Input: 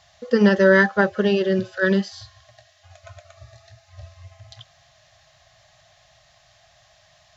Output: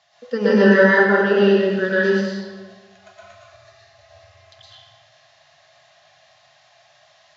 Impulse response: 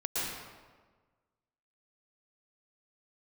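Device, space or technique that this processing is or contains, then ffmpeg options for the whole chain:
supermarket ceiling speaker: -filter_complex "[0:a]highpass=230,lowpass=5800[s0];[1:a]atrim=start_sample=2205[s1];[s0][s1]afir=irnorm=-1:irlink=0,volume=0.708"

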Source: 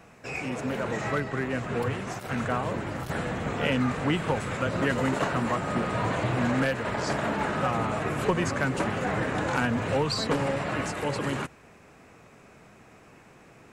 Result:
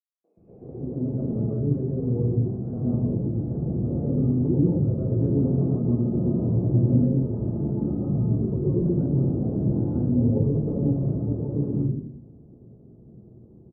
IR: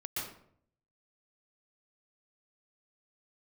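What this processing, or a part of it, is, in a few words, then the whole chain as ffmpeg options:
next room: -filter_complex "[0:a]lowpass=f=410:w=0.5412,lowpass=f=410:w=1.3066[s0];[1:a]atrim=start_sample=2205[s1];[s0][s1]afir=irnorm=-1:irlink=0,asettb=1/sr,asplit=3[s2][s3][s4];[s2]atrim=end=6.854[s5];[s3]atrim=start=6.85:end=8.58,asetpts=PTS-STARTPTS,afade=t=in:d=0.004:c=qsin,afade=t=out:st=1.726:d=0.004:c=qsin,equalizer=f=640:w=1.5:g=-4[s6];[s4]atrim=start=8.576[s7];[s5][s6]acrossfade=d=0.004:c1=hsin:c2=qsin[s8];[s8][s7]acrossfade=d=0.004:c1=qsin:c2=hsin,acrossover=split=390|2600[s9][s10][s11];[s10]adelay=240[s12];[s9]adelay=370[s13];[s13][s12][s11]amix=inputs=3:normalize=0,volume=1.78"

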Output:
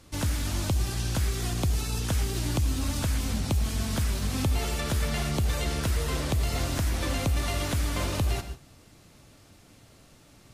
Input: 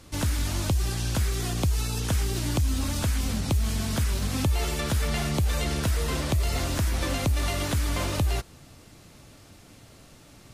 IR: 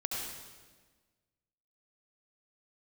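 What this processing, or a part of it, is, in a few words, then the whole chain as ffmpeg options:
keyed gated reverb: -filter_complex "[0:a]asplit=3[s0][s1][s2];[1:a]atrim=start_sample=2205[s3];[s1][s3]afir=irnorm=-1:irlink=0[s4];[s2]apad=whole_len=464540[s5];[s4][s5]sidechaingate=range=0.0224:threshold=0.00708:ratio=16:detection=peak,volume=0.316[s6];[s0][s6]amix=inputs=2:normalize=0,volume=0.631"

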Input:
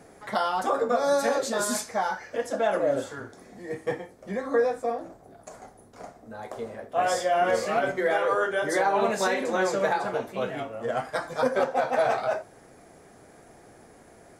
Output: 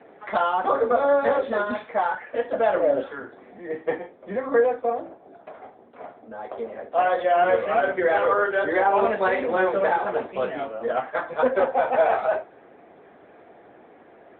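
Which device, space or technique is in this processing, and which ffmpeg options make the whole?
telephone: -af "highpass=260,lowpass=3500,volume=1.68" -ar 8000 -c:a libopencore_amrnb -b:a 10200

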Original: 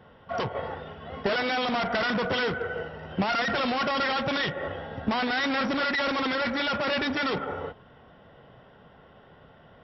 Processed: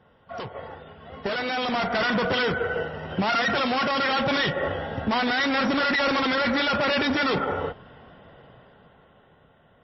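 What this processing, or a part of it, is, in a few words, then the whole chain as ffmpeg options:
low-bitrate web radio: -filter_complex "[0:a]asplit=3[s0][s1][s2];[s0]afade=t=out:st=2.74:d=0.02[s3];[s1]highpass=f=67:w=0.5412,highpass=f=67:w=1.3066,afade=t=in:st=2.74:d=0.02,afade=t=out:st=4.15:d=0.02[s4];[s2]afade=t=in:st=4.15:d=0.02[s5];[s3][s4][s5]amix=inputs=3:normalize=0,dynaudnorm=f=410:g=9:m=4.22,alimiter=limit=0.282:level=0:latency=1:release=17,volume=0.562" -ar 22050 -c:a libmp3lame -b:a 24k

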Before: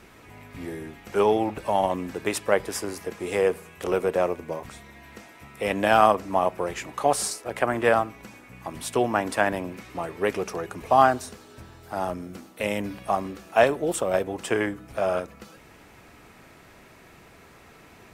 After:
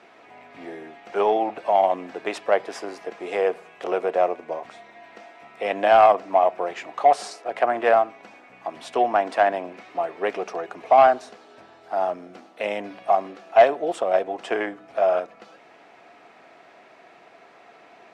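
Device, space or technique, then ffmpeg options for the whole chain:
intercom: -af "highpass=330,lowpass=4200,equalizer=f=700:t=o:w=0.31:g=10.5,asoftclip=type=tanh:threshold=0.562"

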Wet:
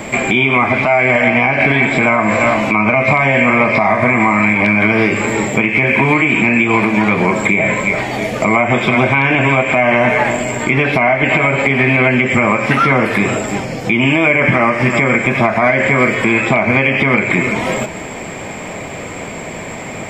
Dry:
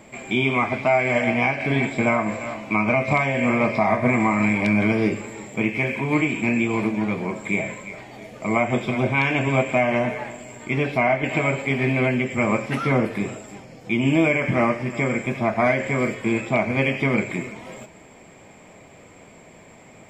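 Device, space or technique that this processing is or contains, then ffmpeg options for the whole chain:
mastering chain: -filter_complex "[0:a]equalizer=f=1800:t=o:w=1.7:g=2.5,acrossover=split=780|3000[s0][s1][s2];[s0]acompressor=threshold=0.0355:ratio=4[s3];[s1]acompressor=threshold=0.0501:ratio=4[s4];[s2]acompressor=threshold=0.00398:ratio=4[s5];[s3][s4][s5]amix=inputs=3:normalize=0,acompressor=threshold=0.0355:ratio=3,alimiter=level_in=11.2:limit=0.891:release=50:level=0:latency=1,volume=0.891"

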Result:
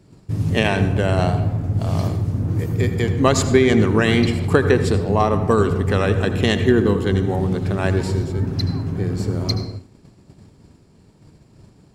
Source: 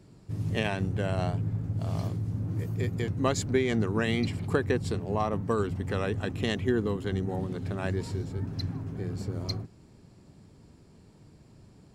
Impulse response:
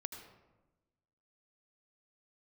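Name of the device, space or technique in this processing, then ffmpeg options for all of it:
keyed gated reverb: -filter_complex "[0:a]asplit=3[s0][s1][s2];[1:a]atrim=start_sample=2205[s3];[s1][s3]afir=irnorm=-1:irlink=0[s4];[s2]apad=whole_len=526662[s5];[s4][s5]sidechaingate=range=0.0224:threshold=0.00282:ratio=16:detection=peak,volume=2.37[s6];[s0][s6]amix=inputs=2:normalize=0,volume=1.33"

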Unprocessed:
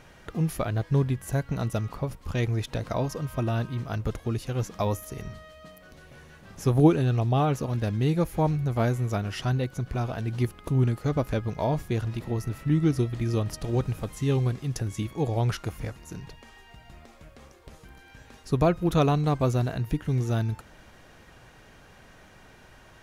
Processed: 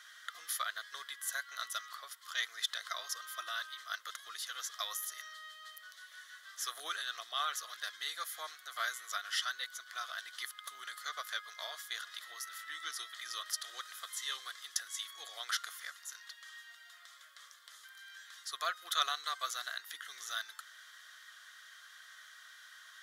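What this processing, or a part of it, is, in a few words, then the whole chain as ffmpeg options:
headphones lying on a table: -af "highpass=f=1300:w=0.5412,highpass=f=1300:w=1.3066,superequalizer=9b=0.282:12b=0.251,equalizer=f=3500:t=o:w=0.33:g=4.5,volume=1.41"

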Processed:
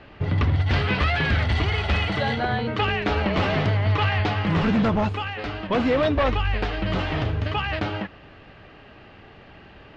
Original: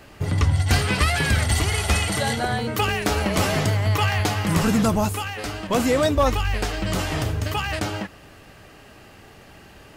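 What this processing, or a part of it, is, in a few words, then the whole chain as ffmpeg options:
synthesiser wavefolder: -af "aeval=exprs='0.188*(abs(mod(val(0)/0.188+3,4)-2)-1)':c=same,lowpass=f=3700:w=0.5412,lowpass=f=3700:w=1.3066"

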